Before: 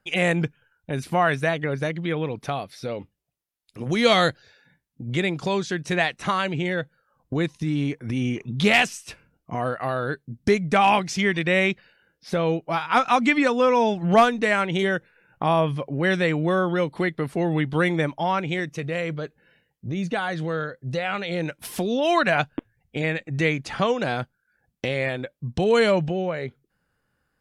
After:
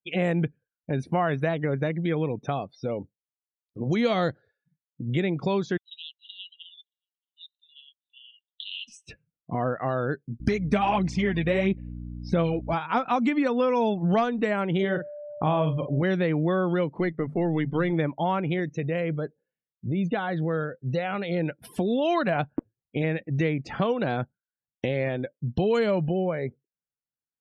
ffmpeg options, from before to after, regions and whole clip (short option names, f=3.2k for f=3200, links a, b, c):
-filter_complex "[0:a]asettb=1/sr,asplit=3[a][b][c];[a]atrim=end=5.774[d];[b]atrim=start=5.77:end=8.88,asetpts=PTS-STARTPTS,afade=t=in:d=0.004:c=qsin,afade=t=out:st=3.106:d=0.004:c=qsin,asuperpass=centerf=3400:order=12:qfactor=2.5,aecho=1:1:623:0.0668,atrim=end_sample=137151[e];[c]atrim=start=8.876[f];[d][e]acrossfade=d=0.004:c1=hsin:c2=qsin[g];[g][f]acrossfade=d=0.004:c1=qsin:c2=hsin,asettb=1/sr,asplit=3[h][i][j];[h]atrim=end=10.404[k];[i]atrim=start=10.4:end=12.74,asetpts=PTS-STARTPTS,afade=t=in:d=0.004:c=qsin,afade=t=out:st=2.336:d=0.004:c=qsin,aphaser=in_gain=1:out_gain=1:delay=4.8:decay=0.54:speed=1.5:type=sinusoidal,bass=f=250:g=2,treble=f=4k:g=3,aeval=exprs='val(0)+0.0178*(sin(2*PI*60*n/s)+sin(2*PI*2*60*n/s)/2+sin(2*PI*3*60*n/s)/3+sin(2*PI*4*60*n/s)/4+sin(2*PI*5*60*n/s)/5)':c=same[l];[j]atrim=start=12.736[m];[k][l]acrossfade=d=0.004:c1=hsin:c2=qsin[n];[n][m]acrossfade=d=0.004:c1=qsin:c2=hsin,asettb=1/sr,asplit=3[o][p][q];[o]atrim=end=14.804[r];[p]atrim=start=14.8:end=16.03,asetpts=PTS-STARTPTS,afade=t=in:d=0.004:c=qsin,afade=t=out:st=1.226:d=0.004:c=qsin,asubboost=boost=4:cutoff=170,aeval=exprs='val(0)+0.0251*sin(2*PI*590*n/s)':c=same,asplit=2[s][t];[t]adelay=45,volume=-8dB[u];[s][u]amix=inputs=2:normalize=0,atrim=end_sample=54243[v];[q]atrim=start=16.026[w];[r][v]acrossfade=d=0.004:c1=hsin:c2=qsin[x];[x][w]acrossfade=d=0.004:c1=qsin:c2=hsin,asettb=1/sr,asplit=3[y][z][aa];[y]atrim=end=16.994[ab];[z]atrim=start=16.99:end=17.93,asetpts=PTS-STARTPTS,afade=t=in:d=0.004:c=qsin,afade=t=out:st=0.936:d=0.004:c=qsin,aeval=exprs='if(lt(val(0),0),0.708*val(0),val(0))':c=same,bandreject=f=50:t=h:w=6,bandreject=f=100:t=h:w=6,bandreject=f=150:t=h:w=6,bandreject=f=200:t=h:w=6,bandreject=f=250:t=h:w=6[ac];[aa]atrim=start=17.926[ad];[ab][ac]acrossfade=d=0.004:c1=hsin:c2=qsin[ae];[ae][ad]acrossfade=d=0.004:c1=qsin:c2=hsin,equalizer=f=220:w=0.33:g=6,afftdn=nr=32:nf=-39,acrossover=split=1200|3500[af][ag][ah];[af]acompressor=threshold=-17dB:ratio=4[ai];[ag]acompressor=threshold=-31dB:ratio=4[aj];[ah]acompressor=threshold=-44dB:ratio=4[ak];[ai][aj][ak]amix=inputs=3:normalize=0,volume=-4dB"